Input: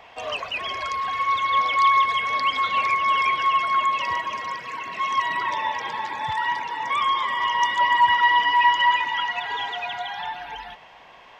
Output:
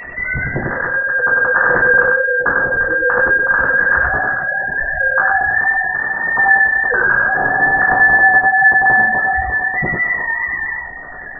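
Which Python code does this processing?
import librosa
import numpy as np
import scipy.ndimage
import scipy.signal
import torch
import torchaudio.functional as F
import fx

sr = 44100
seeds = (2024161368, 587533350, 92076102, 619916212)

p1 = fx.sine_speech(x, sr)
p2 = fx.rider(p1, sr, range_db=5, speed_s=2.0)
p3 = p2 + fx.echo_single(p2, sr, ms=97, db=-4.0, dry=0)
p4 = fx.room_shoebox(p3, sr, seeds[0], volume_m3=160.0, walls='furnished', distance_m=1.9)
p5 = fx.freq_invert(p4, sr, carrier_hz=2700)
p6 = fx.env_flatten(p5, sr, amount_pct=50)
y = F.gain(torch.from_numpy(p6), -2.5).numpy()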